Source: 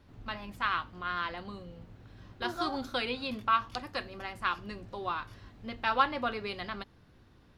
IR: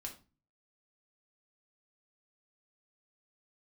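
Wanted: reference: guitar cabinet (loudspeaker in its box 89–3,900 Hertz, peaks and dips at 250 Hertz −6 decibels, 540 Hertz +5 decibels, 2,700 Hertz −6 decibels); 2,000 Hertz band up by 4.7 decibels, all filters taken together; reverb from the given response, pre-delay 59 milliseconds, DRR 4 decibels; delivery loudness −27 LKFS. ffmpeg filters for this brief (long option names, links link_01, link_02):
-filter_complex "[0:a]equalizer=frequency=2000:width_type=o:gain=7.5,asplit=2[link_01][link_02];[1:a]atrim=start_sample=2205,adelay=59[link_03];[link_02][link_03]afir=irnorm=-1:irlink=0,volume=-1dB[link_04];[link_01][link_04]amix=inputs=2:normalize=0,highpass=89,equalizer=frequency=250:width_type=q:width=4:gain=-6,equalizer=frequency=540:width_type=q:width=4:gain=5,equalizer=frequency=2700:width_type=q:width=4:gain=-6,lowpass=frequency=3900:width=0.5412,lowpass=frequency=3900:width=1.3066,volume=3dB"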